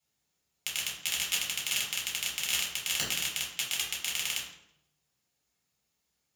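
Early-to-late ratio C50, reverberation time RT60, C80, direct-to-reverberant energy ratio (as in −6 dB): 4.0 dB, 0.80 s, 7.5 dB, −5.5 dB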